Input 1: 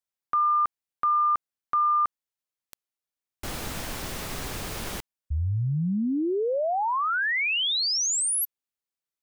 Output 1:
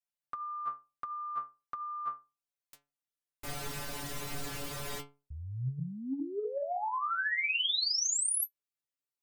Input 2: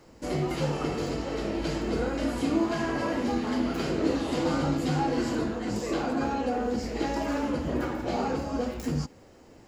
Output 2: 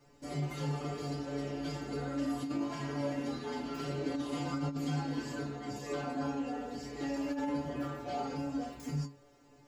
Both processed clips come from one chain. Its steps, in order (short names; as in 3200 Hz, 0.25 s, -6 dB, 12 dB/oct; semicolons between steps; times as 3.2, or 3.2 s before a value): metallic resonator 140 Hz, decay 0.3 s, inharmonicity 0.002; negative-ratio compressor -35 dBFS, ratio -0.5; gain +3 dB